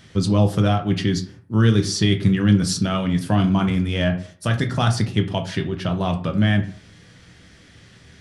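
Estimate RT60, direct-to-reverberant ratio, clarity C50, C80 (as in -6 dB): 0.50 s, 4.5 dB, 12.5 dB, 16.5 dB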